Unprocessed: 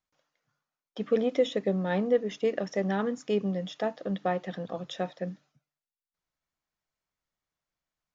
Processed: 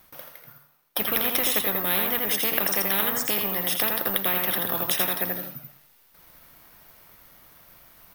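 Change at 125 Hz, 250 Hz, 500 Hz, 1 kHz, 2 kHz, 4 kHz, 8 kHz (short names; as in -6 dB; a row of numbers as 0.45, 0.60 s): -3.5 dB, -3.5 dB, -4.5 dB, +5.0 dB, +11.5 dB, +14.0 dB, n/a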